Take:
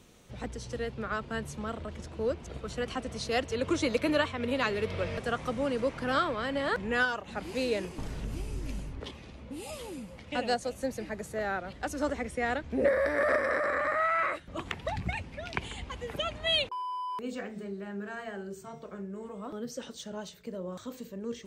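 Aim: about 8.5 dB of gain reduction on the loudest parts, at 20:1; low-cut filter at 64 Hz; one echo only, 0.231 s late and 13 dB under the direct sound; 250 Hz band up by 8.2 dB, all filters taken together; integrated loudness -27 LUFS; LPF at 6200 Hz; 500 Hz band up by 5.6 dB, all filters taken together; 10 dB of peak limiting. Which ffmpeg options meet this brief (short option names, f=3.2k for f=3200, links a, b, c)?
-af "highpass=64,lowpass=6.2k,equalizer=f=250:t=o:g=8.5,equalizer=f=500:t=o:g=4.5,acompressor=threshold=-24dB:ratio=20,alimiter=limit=-22dB:level=0:latency=1,aecho=1:1:231:0.224,volume=5.5dB"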